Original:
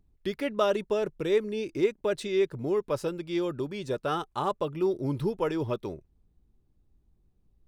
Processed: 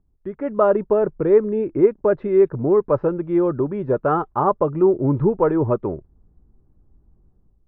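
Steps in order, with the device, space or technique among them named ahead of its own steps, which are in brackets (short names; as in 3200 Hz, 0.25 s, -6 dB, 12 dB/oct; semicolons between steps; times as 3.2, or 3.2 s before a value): action camera in a waterproof case (LPF 1400 Hz 24 dB/oct; AGC gain up to 11 dB; AAC 64 kbps 24000 Hz)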